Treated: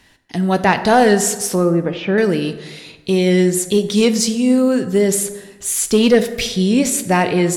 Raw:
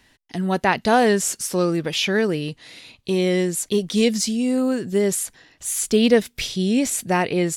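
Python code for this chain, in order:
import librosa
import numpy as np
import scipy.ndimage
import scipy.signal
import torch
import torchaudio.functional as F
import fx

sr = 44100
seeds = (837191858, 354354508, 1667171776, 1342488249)

p1 = fx.lowpass(x, sr, hz=1400.0, slope=12, at=(1.55, 2.18))
p2 = fx.fold_sine(p1, sr, drive_db=4, ceiling_db=-3.0)
p3 = p1 + (p2 * librosa.db_to_amplitude(-3.5))
p4 = fx.rev_plate(p3, sr, seeds[0], rt60_s=1.3, hf_ratio=0.5, predelay_ms=0, drr_db=9.0)
y = p4 * librosa.db_to_amplitude(-3.5)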